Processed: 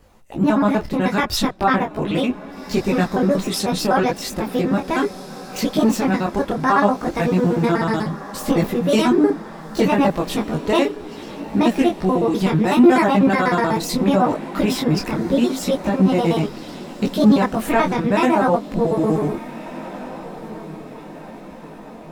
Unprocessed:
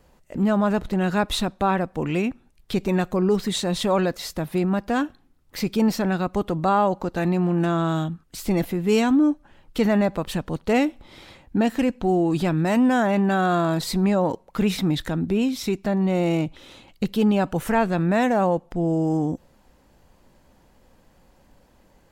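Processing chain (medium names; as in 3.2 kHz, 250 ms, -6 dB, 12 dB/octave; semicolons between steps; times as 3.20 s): pitch shift switched off and on +5.5 st, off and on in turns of 62 ms; on a send: echo that smears into a reverb 1615 ms, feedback 51%, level -15.5 dB; on the sum: detune thickener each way 24 cents; trim +8 dB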